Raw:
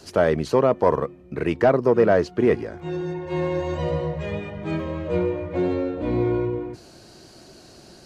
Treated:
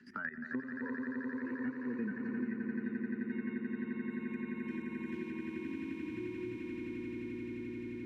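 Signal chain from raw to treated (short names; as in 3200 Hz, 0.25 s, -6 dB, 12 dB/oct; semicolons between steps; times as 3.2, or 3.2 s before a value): 4.1–5.33 block floating point 3-bit; spectral noise reduction 21 dB; double band-pass 650 Hz, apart 2.9 oct; bell 1100 Hz -2.5 dB 0.48 oct; level quantiser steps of 18 dB; harmonic-percussive split percussive -11 dB; swelling echo 87 ms, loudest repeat 8, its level -5 dB; three-band squash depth 100%; gain +2 dB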